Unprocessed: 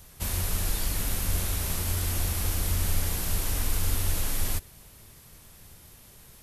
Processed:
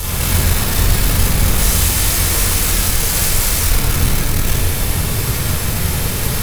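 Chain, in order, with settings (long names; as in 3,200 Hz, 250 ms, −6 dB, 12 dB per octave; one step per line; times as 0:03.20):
0:01.58–0:03.69: parametric band 7,900 Hz +10.5 dB 2.2 octaves
fuzz pedal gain 56 dB, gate −54 dBFS
rectangular room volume 1,500 cubic metres, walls mixed, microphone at 4.3 metres
level −7.5 dB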